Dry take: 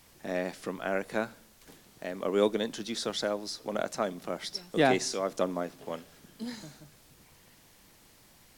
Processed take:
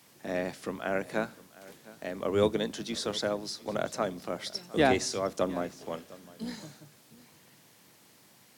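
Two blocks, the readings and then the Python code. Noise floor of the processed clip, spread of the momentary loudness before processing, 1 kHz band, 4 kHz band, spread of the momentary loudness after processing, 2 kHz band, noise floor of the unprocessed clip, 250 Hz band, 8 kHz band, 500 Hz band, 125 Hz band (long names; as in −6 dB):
−60 dBFS, 14 LU, 0.0 dB, 0.0 dB, 16 LU, 0.0 dB, −59 dBFS, +0.5 dB, 0.0 dB, 0.0 dB, +2.0 dB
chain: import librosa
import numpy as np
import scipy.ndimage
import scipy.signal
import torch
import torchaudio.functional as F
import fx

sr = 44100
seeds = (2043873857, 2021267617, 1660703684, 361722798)

p1 = fx.octave_divider(x, sr, octaves=2, level_db=1.0)
p2 = scipy.signal.sosfilt(scipy.signal.butter(4, 120.0, 'highpass', fs=sr, output='sos'), p1)
y = p2 + fx.echo_single(p2, sr, ms=708, db=-20.5, dry=0)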